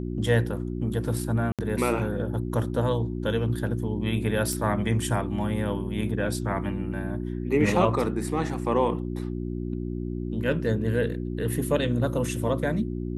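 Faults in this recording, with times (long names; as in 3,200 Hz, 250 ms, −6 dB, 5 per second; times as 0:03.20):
mains hum 60 Hz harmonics 6 −31 dBFS
0:01.52–0:01.59: drop-out 67 ms
0:04.53: click −16 dBFS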